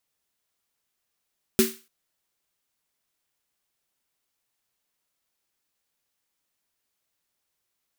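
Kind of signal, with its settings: snare drum length 0.29 s, tones 230 Hz, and 380 Hz, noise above 1300 Hz, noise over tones -5 dB, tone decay 0.25 s, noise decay 0.35 s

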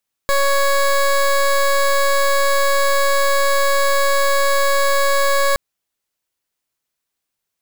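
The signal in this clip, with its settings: pulse 557 Hz, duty 19% -15 dBFS 5.27 s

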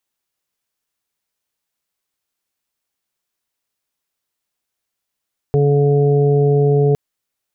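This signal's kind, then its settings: steady additive tone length 1.41 s, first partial 143 Hz, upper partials -15/-1/-20/-14.5 dB, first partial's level -13 dB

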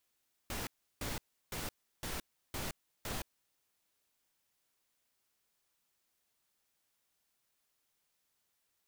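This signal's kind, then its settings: noise bursts pink, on 0.17 s, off 0.34 s, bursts 6, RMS -39.5 dBFS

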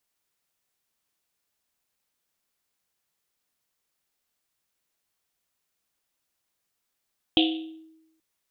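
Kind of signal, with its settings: Risset drum length 0.83 s, pitch 320 Hz, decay 0.97 s, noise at 3200 Hz, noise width 1000 Hz, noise 35%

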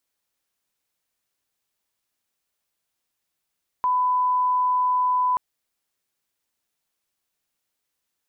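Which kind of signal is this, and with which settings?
line-up tone -18 dBFS 1.53 s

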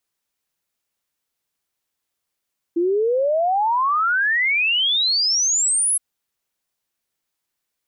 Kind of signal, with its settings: log sweep 330 Hz -> 11000 Hz 3.22 s -16 dBFS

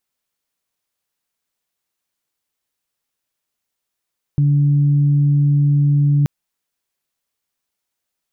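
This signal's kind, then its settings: steady additive tone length 1.88 s, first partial 144 Hz, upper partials -17 dB, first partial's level -11 dB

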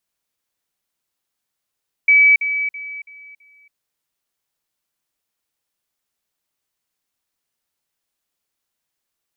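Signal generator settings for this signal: level ladder 2290 Hz -8 dBFS, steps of -10 dB, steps 5, 0.28 s 0.05 s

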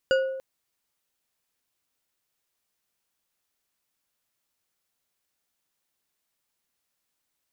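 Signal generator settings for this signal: glass hit bar, length 0.29 s, lowest mode 530 Hz, decay 1.01 s, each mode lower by 6 dB, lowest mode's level -17 dB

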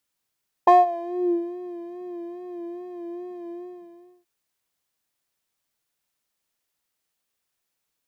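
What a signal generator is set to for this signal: synth patch with vibrato F5, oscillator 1 triangle, oscillator 2 square, interval -12 st, detune 10 cents, oscillator 2 level 0 dB, noise -18 dB, filter bandpass, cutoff 160 Hz, Q 6.2, filter envelope 2.5 oct, filter decay 0.92 s, filter sustain 20%, attack 12 ms, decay 0.17 s, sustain -20 dB, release 0.75 s, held 2.83 s, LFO 2.4 Hz, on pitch 47 cents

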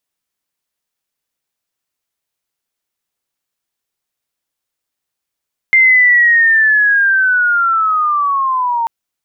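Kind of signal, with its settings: chirp linear 2100 Hz -> 910 Hz -5 dBFS -> -13 dBFS 3.14 s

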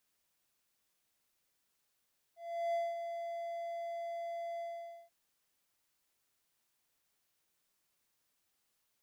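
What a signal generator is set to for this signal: ADSR triangle 680 Hz, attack 0.378 s, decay 0.208 s, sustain -7.5 dB, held 2.24 s, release 0.496 s -28.5 dBFS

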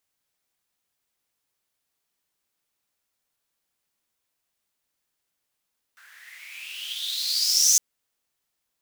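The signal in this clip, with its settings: swept filtered noise pink, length 1.81 s highpass, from 1500 Hz, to 6400 Hz, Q 9, exponential, gain ramp +36.5 dB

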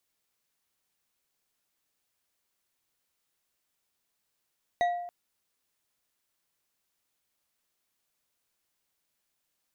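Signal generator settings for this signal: glass hit bar, length 0.28 s, lowest mode 703 Hz, decay 0.91 s, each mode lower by 9 dB, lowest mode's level -21 dB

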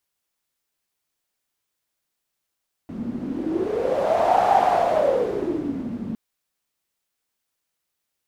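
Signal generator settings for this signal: wind-like swept noise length 3.26 s, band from 220 Hz, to 770 Hz, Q 8.8, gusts 1, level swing 10.5 dB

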